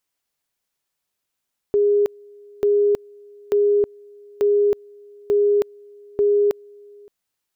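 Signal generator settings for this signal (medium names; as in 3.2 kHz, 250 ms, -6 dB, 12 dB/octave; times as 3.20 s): two-level tone 410 Hz -13.5 dBFS, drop 28 dB, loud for 0.32 s, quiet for 0.57 s, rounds 6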